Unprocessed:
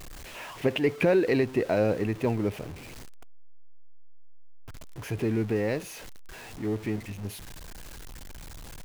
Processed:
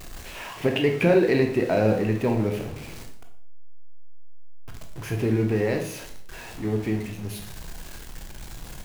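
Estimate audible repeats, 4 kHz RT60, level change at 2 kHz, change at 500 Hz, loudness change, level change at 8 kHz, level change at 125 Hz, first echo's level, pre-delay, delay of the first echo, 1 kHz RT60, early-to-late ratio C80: no echo audible, 0.50 s, +3.5 dB, +3.5 dB, +3.5 dB, +3.5 dB, +5.5 dB, no echo audible, 16 ms, no echo audible, 0.55 s, 11.5 dB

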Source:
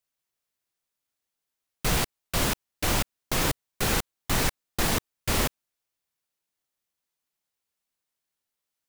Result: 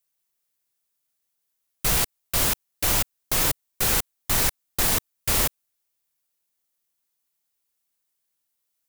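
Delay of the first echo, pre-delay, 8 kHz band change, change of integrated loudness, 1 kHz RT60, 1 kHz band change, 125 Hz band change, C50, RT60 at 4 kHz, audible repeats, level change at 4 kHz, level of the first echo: no echo audible, no reverb audible, +6.0 dB, +5.0 dB, no reverb audible, 0.0 dB, −1.5 dB, no reverb audible, no reverb audible, no echo audible, +2.5 dB, no echo audible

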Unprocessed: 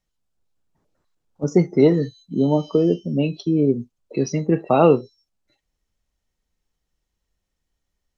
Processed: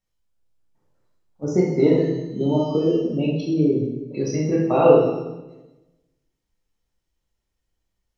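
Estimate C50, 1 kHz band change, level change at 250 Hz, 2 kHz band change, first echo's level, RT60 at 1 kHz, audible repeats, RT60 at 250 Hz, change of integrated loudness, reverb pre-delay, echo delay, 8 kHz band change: 1.5 dB, −1.5 dB, −1.0 dB, −1.0 dB, no echo audible, 1.0 s, no echo audible, 1.3 s, −0.5 dB, 8 ms, no echo audible, can't be measured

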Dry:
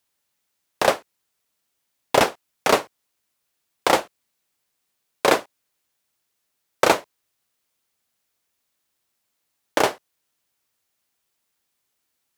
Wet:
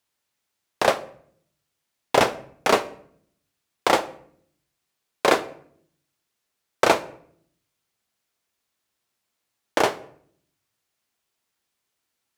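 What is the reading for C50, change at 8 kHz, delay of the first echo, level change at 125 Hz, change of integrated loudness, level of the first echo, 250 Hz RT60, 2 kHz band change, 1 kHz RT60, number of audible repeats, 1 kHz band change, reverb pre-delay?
17.5 dB, −3.0 dB, no echo audible, −0.5 dB, −1.0 dB, no echo audible, 0.95 s, −1.0 dB, 0.60 s, no echo audible, −1.0 dB, 3 ms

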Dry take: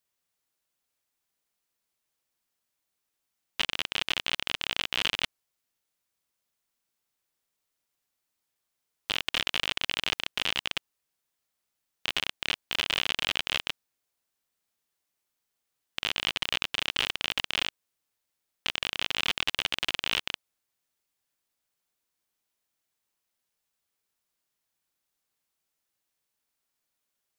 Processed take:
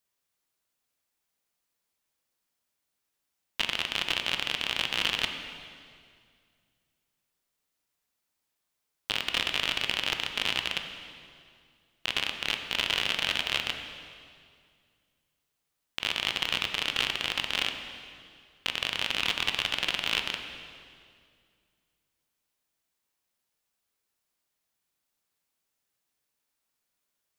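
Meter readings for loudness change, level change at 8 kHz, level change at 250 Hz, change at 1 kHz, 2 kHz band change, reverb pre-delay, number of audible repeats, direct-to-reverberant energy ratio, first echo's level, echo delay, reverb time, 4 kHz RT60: +1.0 dB, +0.5 dB, +1.5 dB, +1.5 dB, +1.0 dB, 14 ms, no echo audible, 5.0 dB, no echo audible, no echo audible, 2.2 s, 2.0 s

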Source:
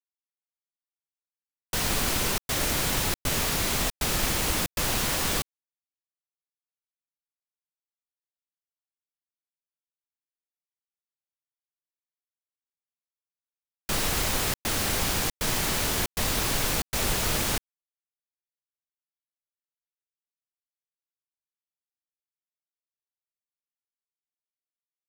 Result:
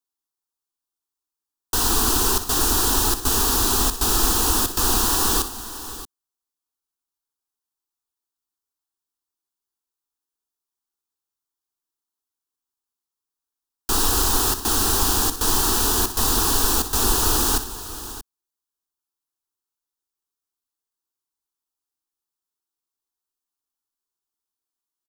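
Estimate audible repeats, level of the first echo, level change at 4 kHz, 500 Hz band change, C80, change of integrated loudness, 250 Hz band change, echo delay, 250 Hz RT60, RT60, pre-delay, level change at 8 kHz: 3, −12.0 dB, +5.0 dB, +4.5 dB, no reverb audible, +7.0 dB, +6.0 dB, 61 ms, no reverb audible, no reverb audible, no reverb audible, +8.0 dB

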